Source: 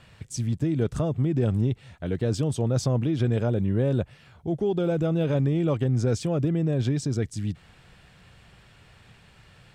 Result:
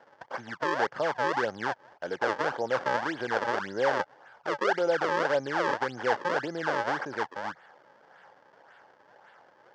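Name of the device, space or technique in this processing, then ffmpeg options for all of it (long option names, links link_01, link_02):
circuit-bent sampling toy: -af "acrusher=samples=35:mix=1:aa=0.000001:lfo=1:lforange=56:lforate=1.8,highpass=530,equalizer=frequency=540:width_type=q:width=4:gain=6,equalizer=frequency=850:width_type=q:width=4:gain=9,equalizer=frequency=1600:width_type=q:width=4:gain=9,equalizer=frequency=2500:width_type=q:width=4:gain=-8,equalizer=frequency=3900:width_type=q:width=4:gain=-9,lowpass=frequency=4900:width=0.5412,lowpass=frequency=4900:width=1.3066"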